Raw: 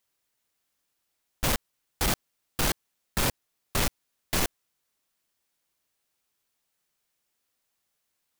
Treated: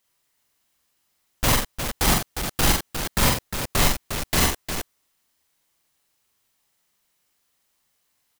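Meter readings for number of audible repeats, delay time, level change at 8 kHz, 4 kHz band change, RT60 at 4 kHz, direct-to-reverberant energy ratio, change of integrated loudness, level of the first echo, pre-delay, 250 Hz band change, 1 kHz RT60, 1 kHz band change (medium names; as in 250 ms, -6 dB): 3, 44 ms, +7.5 dB, +7.5 dB, no reverb, no reverb, +7.0 dB, -2.5 dB, no reverb, +7.5 dB, no reverb, +8.0 dB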